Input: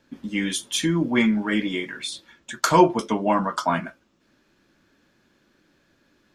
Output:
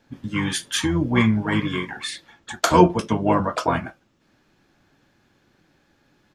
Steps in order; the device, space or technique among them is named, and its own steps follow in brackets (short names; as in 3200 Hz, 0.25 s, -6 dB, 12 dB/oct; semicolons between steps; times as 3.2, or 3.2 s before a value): octave pedal (harmoniser -12 st -4 dB)